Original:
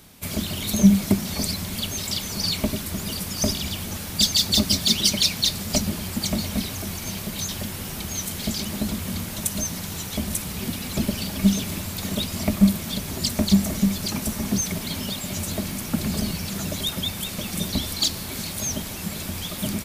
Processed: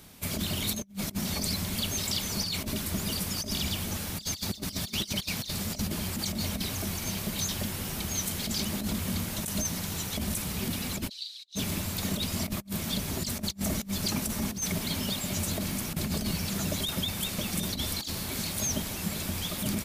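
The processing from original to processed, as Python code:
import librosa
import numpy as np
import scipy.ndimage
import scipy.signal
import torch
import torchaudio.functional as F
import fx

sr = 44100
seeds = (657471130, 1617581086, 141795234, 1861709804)

y = fx.over_compress(x, sr, threshold_db=-26.0, ratio=-0.5)
y = fx.ladder_bandpass(y, sr, hz=4100.0, resonance_pct=85, at=(11.08, 11.55), fade=0.02)
y = y * 10.0 ** (-4.5 / 20.0)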